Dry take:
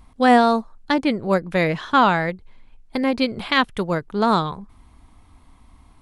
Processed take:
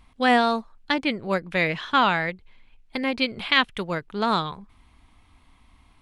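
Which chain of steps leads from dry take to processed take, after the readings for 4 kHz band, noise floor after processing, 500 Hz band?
+1.5 dB, -58 dBFS, -6.0 dB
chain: peaking EQ 2.7 kHz +9.5 dB 1.6 oct; trim -6.5 dB

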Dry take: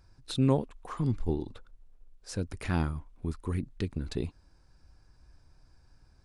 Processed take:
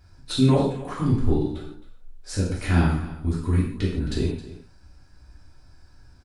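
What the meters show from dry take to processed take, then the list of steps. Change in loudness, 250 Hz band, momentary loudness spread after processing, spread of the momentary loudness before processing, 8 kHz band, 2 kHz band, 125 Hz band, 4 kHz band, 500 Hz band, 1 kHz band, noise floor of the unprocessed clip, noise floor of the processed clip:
+8.5 dB, +8.5 dB, 13 LU, 13 LU, +8.5 dB, +9.0 dB, +9.0 dB, +9.5 dB, +7.5 dB, +7.5 dB, -62 dBFS, -53 dBFS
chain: delay 267 ms -16 dB; gated-style reverb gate 200 ms falling, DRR -6 dB; trim +1.5 dB

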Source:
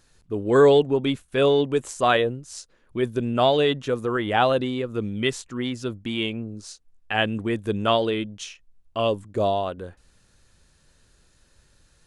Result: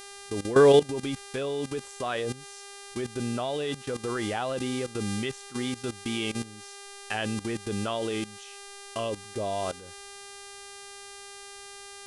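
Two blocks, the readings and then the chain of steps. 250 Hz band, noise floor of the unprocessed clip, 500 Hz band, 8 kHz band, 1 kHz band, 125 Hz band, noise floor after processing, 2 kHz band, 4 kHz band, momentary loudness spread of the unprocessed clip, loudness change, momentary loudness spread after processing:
-5.5 dB, -61 dBFS, -5.5 dB, +2.5 dB, -8.5 dB, -5.5 dB, -45 dBFS, -6.5 dB, -6.0 dB, 16 LU, -6.0 dB, 14 LU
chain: mains buzz 400 Hz, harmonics 28, -37 dBFS -2 dB/octave; level held to a coarse grid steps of 15 dB

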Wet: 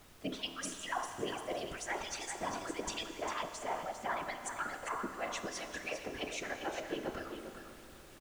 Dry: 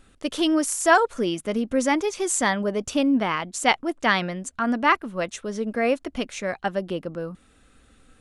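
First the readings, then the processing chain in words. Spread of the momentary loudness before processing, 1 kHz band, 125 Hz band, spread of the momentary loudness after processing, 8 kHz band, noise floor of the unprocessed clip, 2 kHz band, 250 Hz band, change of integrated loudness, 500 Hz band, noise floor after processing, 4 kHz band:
11 LU, -14.5 dB, -16.0 dB, 5 LU, -13.5 dB, -58 dBFS, -15.5 dB, -20.5 dB, -16.0 dB, -16.0 dB, -55 dBFS, -11.5 dB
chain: harmonic-percussive separation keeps percussive; low-pass that closes with the level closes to 940 Hz, closed at -19 dBFS; comb 3 ms; de-hum 50.79 Hz, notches 31; reverse; compression, threshold -39 dBFS, peak gain reduction 21 dB; reverse; whisper effect; added noise pink -61 dBFS; on a send: delay 400 ms -8 dB; on the sum: Schroeder reverb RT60 3.2 s, combs from 27 ms, DRR 8 dB; trim +1.5 dB

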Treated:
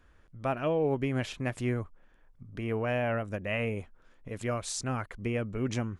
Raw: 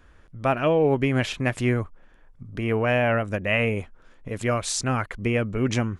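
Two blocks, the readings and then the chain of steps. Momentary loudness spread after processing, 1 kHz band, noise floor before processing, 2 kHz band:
9 LU, -8.5 dB, -53 dBFS, -10.0 dB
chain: dynamic bell 2.3 kHz, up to -3 dB, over -36 dBFS, Q 0.75; trim -7.5 dB

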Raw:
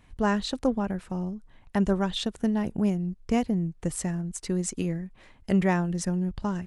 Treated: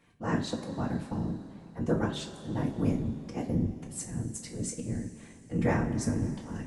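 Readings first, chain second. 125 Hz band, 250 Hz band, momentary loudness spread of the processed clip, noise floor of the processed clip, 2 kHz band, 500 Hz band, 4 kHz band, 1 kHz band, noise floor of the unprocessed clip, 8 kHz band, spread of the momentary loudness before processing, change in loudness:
-2.0 dB, -5.5 dB, 8 LU, -51 dBFS, -4.5 dB, -5.0 dB, -7.5 dB, -6.0 dB, -56 dBFS, -3.5 dB, 8 LU, -4.5 dB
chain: high-pass 110 Hz 24 dB/octave; dynamic bell 3.2 kHz, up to -6 dB, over -48 dBFS, Q 1.6; slow attack 154 ms; whisper effect; two-slope reverb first 0.33 s, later 3.4 s, from -17 dB, DRR 1 dB; trim -5 dB

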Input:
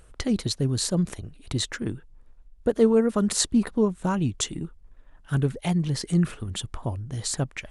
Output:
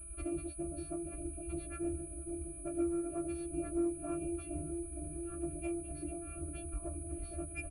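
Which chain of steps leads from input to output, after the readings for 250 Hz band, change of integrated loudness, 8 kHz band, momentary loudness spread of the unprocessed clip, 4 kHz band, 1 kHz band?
-12.5 dB, -14.0 dB, -11.0 dB, 11 LU, under -30 dB, -14.5 dB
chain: partials quantised in pitch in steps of 2 st; bass shelf 480 Hz +9.5 dB; comb 2.1 ms, depth 75%; compression 6:1, threshold -21 dBFS, peak gain reduction 13 dB; crackle 440 per s -36 dBFS; saturation -21.5 dBFS, distortion -14 dB; robot voice 341 Hz; distance through air 110 m; pitch-class resonator D, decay 0.15 s; bucket-brigade echo 463 ms, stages 2048, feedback 76%, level -5.5 dB; class-D stage that switches slowly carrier 9.9 kHz; trim +8.5 dB

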